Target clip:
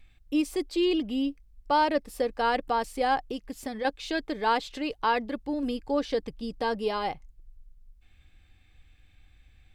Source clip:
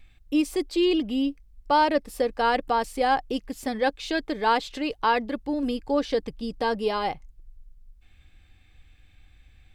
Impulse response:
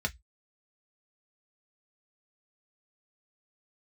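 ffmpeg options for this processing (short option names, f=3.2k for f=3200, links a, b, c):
-filter_complex "[0:a]asettb=1/sr,asplit=3[a][b][c];[a]atrim=end=3.294[d];[b]atrim=start=3.29:end=3.85,asetpts=PTS-STARTPTS,afade=t=in:d=0.004:c=qsin,afade=t=out:st=0.556:d=0.004:c=qsin,acompressor=threshold=-27dB:ratio=6[e];[c]atrim=start=3.846[f];[d][e]acrossfade=d=0.004:c1=hsin:c2=qsin[g];[g][f]acrossfade=d=0.004:c1=qsin:c2=hsin,volume=-3dB"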